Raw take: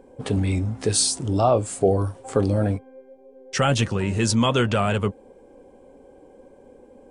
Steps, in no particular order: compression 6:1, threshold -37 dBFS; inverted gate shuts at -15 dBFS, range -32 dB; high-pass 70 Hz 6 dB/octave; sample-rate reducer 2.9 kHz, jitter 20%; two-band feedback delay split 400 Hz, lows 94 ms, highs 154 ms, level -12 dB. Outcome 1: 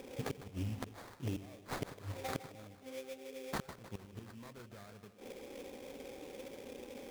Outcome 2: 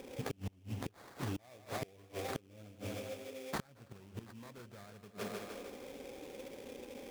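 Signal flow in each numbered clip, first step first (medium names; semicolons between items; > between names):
inverted gate > high-pass > compression > two-band feedback delay > sample-rate reducer; sample-rate reducer > two-band feedback delay > inverted gate > compression > high-pass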